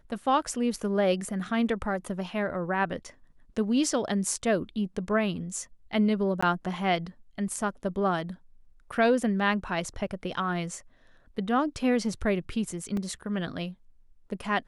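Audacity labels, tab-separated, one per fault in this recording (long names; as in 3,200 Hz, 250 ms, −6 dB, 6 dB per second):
6.410000	6.420000	drop-out 15 ms
12.970000	12.970000	drop-out 2.6 ms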